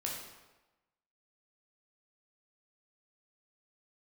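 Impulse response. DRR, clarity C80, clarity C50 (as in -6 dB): -2.5 dB, 5.0 dB, 2.5 dB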